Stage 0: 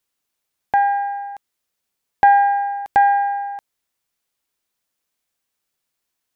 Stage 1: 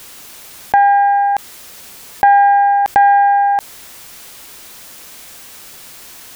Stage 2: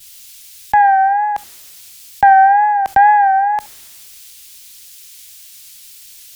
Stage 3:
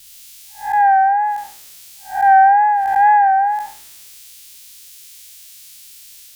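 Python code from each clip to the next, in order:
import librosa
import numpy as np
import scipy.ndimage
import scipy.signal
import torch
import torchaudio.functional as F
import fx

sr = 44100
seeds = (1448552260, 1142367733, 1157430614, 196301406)

y1 = fx.env_flatten(x, sr, amount_pct=70)
y1 = y1 * 10.0 ** (1.5 / 20.0)
y2 = fx.wow_flutter(y1, sr, seeds[0], rate_hz=2.1, depth_cents=74.0)
y2 = y2 + 10.0 ** (-22.0 / 20.0) * np.pad(y2, (int(70 * sr / 1000.0), 0))[:len(y2)]
y2 = fx.band_widen(y2, sr, depth_pct=70)
y2 = y2 * 10.0 ** (-1.5 / 20.0)
y3 = fx.spec_blur(y2, sr, span_ms=190.0)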